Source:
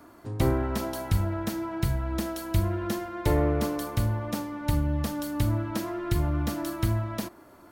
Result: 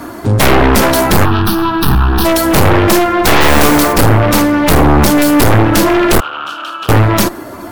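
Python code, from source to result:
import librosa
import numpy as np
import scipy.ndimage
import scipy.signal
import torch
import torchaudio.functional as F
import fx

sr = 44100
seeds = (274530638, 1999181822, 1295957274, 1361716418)

y = fx.spec_quant(x, sr, step_db=15)
y = fx.cheby_harmonics(y, sr, harmonics=(3, 5, 8), levels_db=(-11, -19, -18), full_scale_db=-12.0)
y = fx.fold_sine(y, sr, drive_db=18, ceiling_db=-11.0)
y = fx.fixed_phaser(y, sr, hz=2100.0, stages=6, at=(1.24, 2.24), fade=0.02)
y = fx.mod_noise(y, sr, seeds[0], snr_db=15, at=(3.4, 3.92), fade=0.02)
y = fx.double_bandpass(y, sr, hz=2000.0, octaves=1.1, at=(6.2, 6.89))
y = F.gain(torch.from_numpy(y), 6.5).numpy()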